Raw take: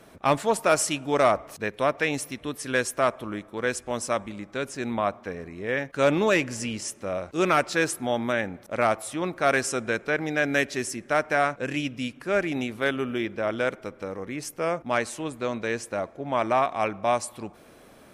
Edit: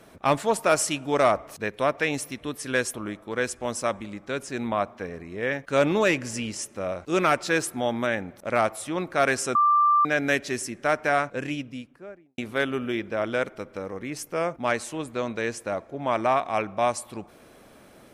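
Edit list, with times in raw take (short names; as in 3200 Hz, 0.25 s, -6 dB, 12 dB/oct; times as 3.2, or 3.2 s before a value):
2.94–3.2 cut
9.81–10.31 bleep 1180 Hz -16 dBFS
11.48–12.64 studio fade out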